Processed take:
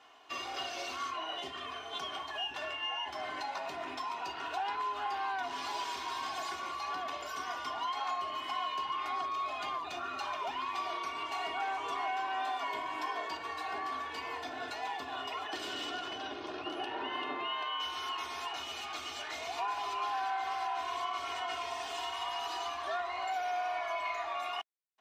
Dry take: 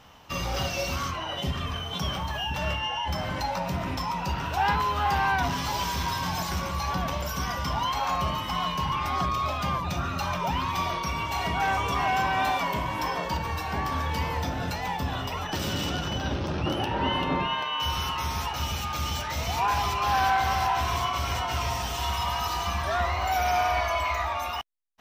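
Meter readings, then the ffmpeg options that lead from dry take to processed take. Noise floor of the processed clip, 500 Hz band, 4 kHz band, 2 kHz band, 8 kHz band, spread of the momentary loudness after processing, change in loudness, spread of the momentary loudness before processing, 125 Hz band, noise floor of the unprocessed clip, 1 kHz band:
−43 dBFS, −8.5 dB, −7.5 dB, −8.5 dB, −12.0 dB, 4 LU, −9.0 dB, 6 LU, below −30 dB, −33 dBFS, −8.0 dB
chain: -af "equalizer=frequency=5600:width=5.6:gain=-7.5,aecho=1:1:2.8:0.75,acompressor=threshold=-25dB:ratio=6,highpass=400,lowpass=7600,volume=-6.5dB"

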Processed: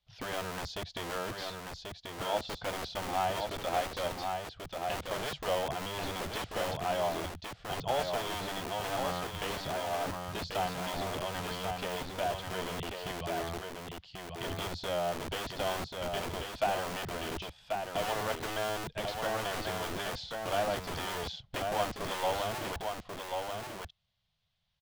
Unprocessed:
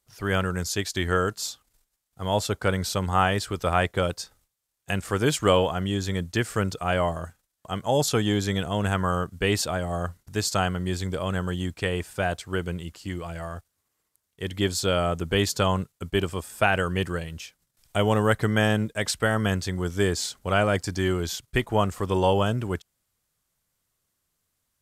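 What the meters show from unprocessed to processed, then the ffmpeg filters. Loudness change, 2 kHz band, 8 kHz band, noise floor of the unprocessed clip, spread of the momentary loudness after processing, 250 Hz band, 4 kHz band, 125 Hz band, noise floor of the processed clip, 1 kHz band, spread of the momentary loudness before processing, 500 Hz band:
−9.5 dB, −9.5 dB, −10.0 dB, −78 dBFS, 7 LU, −14.0 dB, −6.5 dB, −16.0 dB, −60 dBFS, −5.0 dB, 12 LU, −8.0 dB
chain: -filter_complex "[0:a]firequalizer=gain_entry='entry(180,0);entry(260,-20);entry(690,-1);entry(1200,-9);entry(3400,5);entry(8100,-27)':delay=0.05:min_phase=1,acrossover=split=400|880[link_01][link_02][link_03];[link_01]aeval=exprs='(mod(47.3*val(0)+1,2)-1)/47.3':channel_layout=same[link_04];[link_03]acompressor=threshold=-43dB:ratio=6[link_05];[link_04][link_02][link_05]amix=inputs=3:normalize=0,aecho=1:1:1087:0.596"

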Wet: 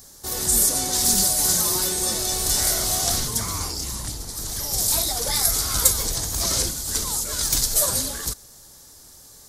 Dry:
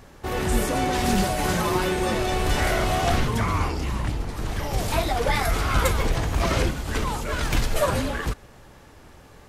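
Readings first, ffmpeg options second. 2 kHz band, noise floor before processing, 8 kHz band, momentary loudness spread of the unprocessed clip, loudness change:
−8.0 dB, −49 dBFS, +16.0 dB, 6 LU, +4.0 dB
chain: -af "aexciter=amount=9.9:drive=6.9:freq=4000,volume=-7.5dB"

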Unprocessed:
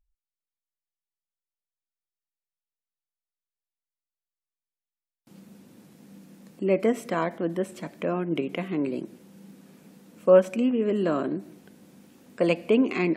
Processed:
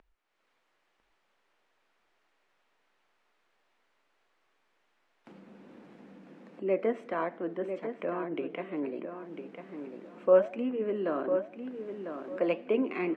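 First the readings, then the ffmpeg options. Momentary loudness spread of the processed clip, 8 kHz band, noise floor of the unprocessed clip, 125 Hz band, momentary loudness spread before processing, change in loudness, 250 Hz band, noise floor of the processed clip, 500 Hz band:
18 LU, below −20 dB, below −85 dBFS, −13.0 dB, 13 LU, −6.0 dB, −8.0 dB, −75 dBFS, −4.5 dB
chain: -filter_complex "[0:a]flanger=delay=4.6:depth=6.2:regen=-81:speed=1.5:shape=triangular,acompressor=mode=upward:threshold=-37dB:ratio=2.5,lowpass=6600,acrossover=split=250 2700:gain=0.158 1 0.126[link_01][link_02][link_03];[link_01][link_02][link_03]amix=inputs=3:normalize=0,asplit=2[link_04][link_05];[link_05]adelay=999,lowpass=frequency=3600:poles=1,volume=-8dB,asplit=2[link_06][link_07];[link_07]adelay=999,lowpass=frequency=3600:poles=1,volume=0.25,asplit=2[link_08][link_09];[link_09]adelay=999,lowpass=frequency=3600:poles=1,volume=0.25[link_10];[link_06][link_08][link_10]amix=inputs=3:normalize=0[link_11];[link_04][link_11]amix=inputs=2:normalize=0"

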